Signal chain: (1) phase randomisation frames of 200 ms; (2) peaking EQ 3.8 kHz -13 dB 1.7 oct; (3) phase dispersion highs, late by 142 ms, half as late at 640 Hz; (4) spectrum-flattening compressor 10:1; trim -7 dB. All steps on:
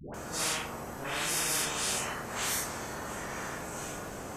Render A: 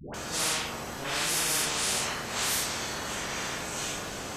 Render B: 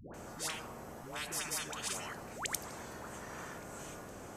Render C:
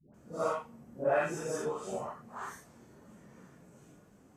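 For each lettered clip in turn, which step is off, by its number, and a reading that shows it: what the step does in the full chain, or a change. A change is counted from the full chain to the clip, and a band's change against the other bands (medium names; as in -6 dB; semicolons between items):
2, 4 kHz band +3.5 dB; 1, crest factor change +11.0 dB; 4, 4 kHz band -18.0 dB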